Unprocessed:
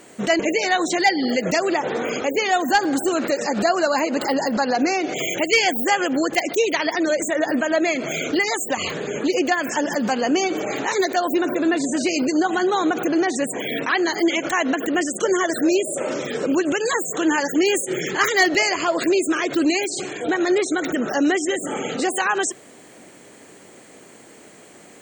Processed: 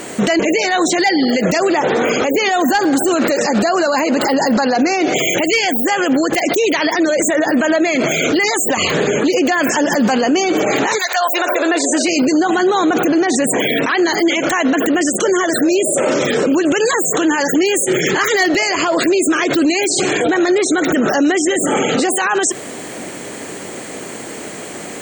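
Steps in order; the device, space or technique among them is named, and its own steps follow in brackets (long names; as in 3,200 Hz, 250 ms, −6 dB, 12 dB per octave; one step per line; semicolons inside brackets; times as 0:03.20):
0:10.97–0:12.06: high-pass filter 950 Hz → 280 Hz 24 dB per octave
loud club master (downward compressor 2.5 to 1, threshold −22 dBFS, peak gain reduction 7 dB; hard clipping −13 dBFS, distortion −56 dB; boost into a limiter +23.5 dB)
level −6.5 dB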